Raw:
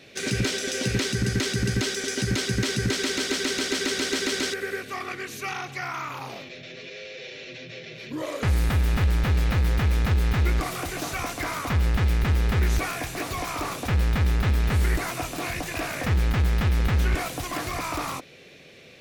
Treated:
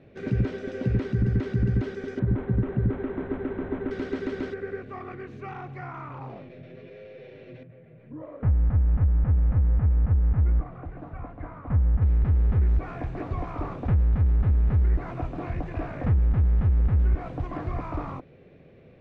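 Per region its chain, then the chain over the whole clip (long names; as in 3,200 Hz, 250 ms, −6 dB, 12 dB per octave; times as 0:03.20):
0:02.19–0:03.91: high-shelf EQ 2,700 Hz −8.5 dB + linearly interpolated sample-rate reduction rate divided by 8×
0:07.63–0:12.02: low-pass filter 2,000 Hz + notch filter 380 Hz, Q 6.2 + expander for the loud parts, over −31 dBFS
whole clip: Bessel low-pass filter 890 Hz, order 2; low-shelf EQ 140 Hz +11 dB; downward compressor, threshold −16 dBFS; level −2 dB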